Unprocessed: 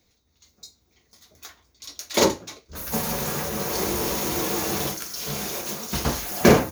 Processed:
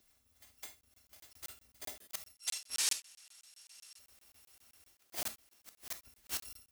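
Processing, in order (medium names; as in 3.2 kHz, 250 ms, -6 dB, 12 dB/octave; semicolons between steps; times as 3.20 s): bit-reversed sample order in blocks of 256 samples; inverted gate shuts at -20 dBFS, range -33 dB; 2.35–3.99 s: frequency weighting ITU-R 468; gated-style reverb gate 90 ms flat, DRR 9.5 dB; crackling interface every 0.13 s, samples 1024, zero, from 0.81 s; trim -4.5 dB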